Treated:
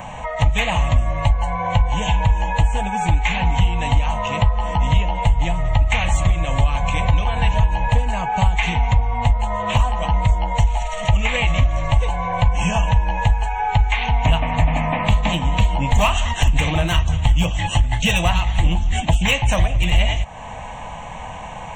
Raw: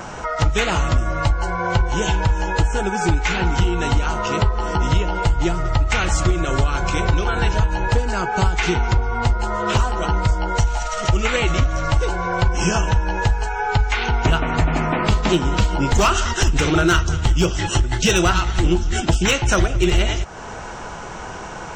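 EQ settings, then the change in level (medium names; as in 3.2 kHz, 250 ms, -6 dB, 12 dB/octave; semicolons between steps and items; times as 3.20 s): static phaser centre 1.4 kHz, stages 6; +2.5 dB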